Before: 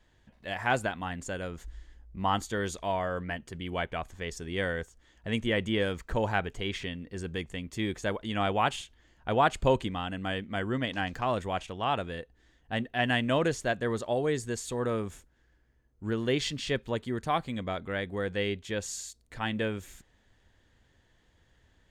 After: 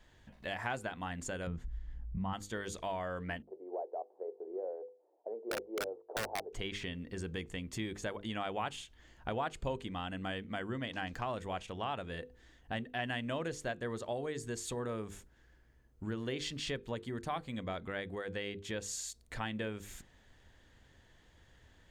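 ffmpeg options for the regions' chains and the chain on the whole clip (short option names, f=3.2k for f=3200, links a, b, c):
-filter_complex "[0:a]asettb=1/sr,asplit=3[a][b][c];[a]atrim=end=1.474[d];[b]atrim=start=1.47:end=2.33,asetpts=PTS-STARTPTS,afade=t=in:d=0.004:c=qsin,afade=t=out:st=0.856:d=0.004:c=qsin,lowpass=f=1.8k:p=1,lowshelf=f=250:t=q:w=1.5:g=8.5[e];[c]atrim=start=2.326[f];[d][e]acrossfade=d=0.004:c1=hsin:c2=qsin[g];[g][f]acrossfade=d=0.004:c1=qsin:c2=hsin,asettb=1/sr,asplit=3[h][i][j];[h]atrim=end=3.424[k];[i]atrim=start=3.42:end=6.53,asetpts=PTS-STARTPTS,afade=t=in:d=0.004:c=qsin,afade=t=out:st=3.106:d=0.004:c=qsin,asuperpass=centerf=550:order=8:qfactor=1.2,aeval=exprs='(mod(15.8*val(0)+1,2)-1)/15.8':c=same[l];[j]atrim=start=6.526[m];[k][l]acrossfade=d=0.004:c1=hsin:c2=qsin[n];[n][m]acrossfade=d=0.004:c1=qsin:c2=hsin,acompressor=threshold=-41dB:ratio=3,bandreject=f=50:t=h:w=6,bandreject=f=100:t=h:w=6,bandreject=f=150:t=h:w=6,bandreject=f=200:t=h:w=6,bandreject=f=250:t=h:w=6,bandreject=f=300:t=h:w=6,bandreject=f=350:t=h:w=6,bandreject=f=400:t=h:w=6,bandreject=f=450:t=h:w=6,bandreject=f=500:t=h:w=6,volume=3dB"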